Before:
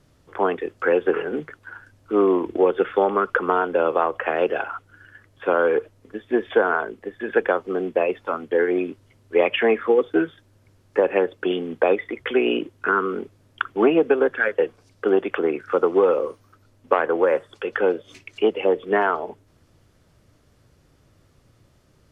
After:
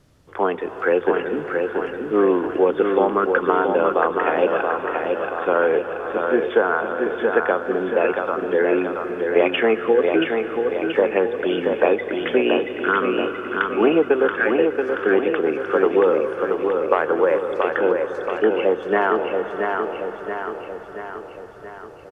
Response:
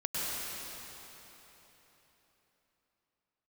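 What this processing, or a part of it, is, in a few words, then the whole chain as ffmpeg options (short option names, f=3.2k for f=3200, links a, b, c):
ducked reverb: -filter_complex "[0:a]asplit=3[a][b][c];[1:a]atrim=start_sample=2205[d];[b][d]afir=irnorm=-1:irlink=0[e];[c]apad=whole_len=975060[f];[e][f]sidechaincompress=threshold=-23dB:ratio=8:attack=6.1:release=431,volume=-13dB[g];[a][g]amix=inputs=2:normalize=0,asettb=1/sr,asplit=3[h][i][j];[h]atrim=end=17.914[k];[i]atrim=start=17.91:end=18.51,asetpts=PTS-STARTPTS,afade=t=in:d=0.004:c=qsin,afade=t=out:st=0.596:d=0.004:c=qsin,highshelf=f=1.9k:t=q:w=3:g=-6[l];[j]atrim=start=18.506[m];[k][l]acrossfade=d=0.004:c1=hsin:c2=qsin[n];[n][m]acrossfade=d=0.004:c1=qsin:c2=hsin,aecho=1:1:679|1358|2037|2716|3395|4074|4753|5432:0.596|0.334|0.187|0.105|0.0586|0.0328|0.0184|0.0103"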